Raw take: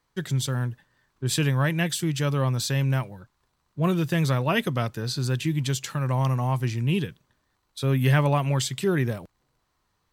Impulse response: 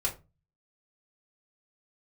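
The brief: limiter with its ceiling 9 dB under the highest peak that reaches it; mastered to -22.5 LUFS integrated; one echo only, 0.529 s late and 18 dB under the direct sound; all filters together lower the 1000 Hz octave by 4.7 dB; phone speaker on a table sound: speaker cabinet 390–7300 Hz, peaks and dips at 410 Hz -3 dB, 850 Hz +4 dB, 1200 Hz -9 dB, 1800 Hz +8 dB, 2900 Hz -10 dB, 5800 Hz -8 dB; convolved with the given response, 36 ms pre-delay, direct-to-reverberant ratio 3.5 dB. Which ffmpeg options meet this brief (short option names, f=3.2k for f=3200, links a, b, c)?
-filter_complex "[0:a]equalizer=f=1k:t=o:g=-5.5,alimiter=limit=-19.5dB:level=0:latency=1,aecho=1:1:529:0.126,asplit=2[a][b];[1:a]atrim=start_sample=2205,adelay=36[c];[b][c]afir=irnorm=-1:irlink=0,volume=-9dB[d];[a][d]amix=inputs=2:normalize=0,highpass=f=390:w=0.5412,highpass=f=390:w=1.3066,equalizer=f=410:t=q:w=4:g=-3,equalizer=f=850:t=q:w=4:g=4,equalizer=f=1.2k:t=q:w=4:g=-9,equalizer=f=1.8k:t=q:w=4:g=8,equalizer=f=2.9k:t=q:w=4:g=-10,equalizer=f=5.8k:t=q:w=4:g=-8,lowpass=f=7.3k:w=0.5412,lowpass=f=7.3k:w=1.3066,volume=12dB"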